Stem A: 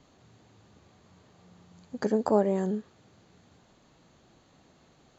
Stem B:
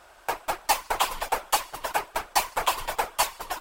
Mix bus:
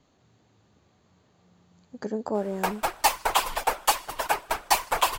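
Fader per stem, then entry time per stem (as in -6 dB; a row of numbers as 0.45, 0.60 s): -4.5, +1.5 dB; 0.00, 2.35 s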